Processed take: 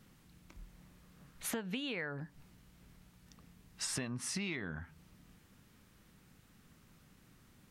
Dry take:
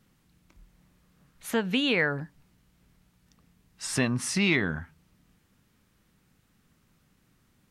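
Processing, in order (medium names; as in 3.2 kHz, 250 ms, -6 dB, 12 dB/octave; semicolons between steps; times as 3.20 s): compression 12:1, threshold -39 dBFS, peak gain reduction 19.5 dB; trim +3 dB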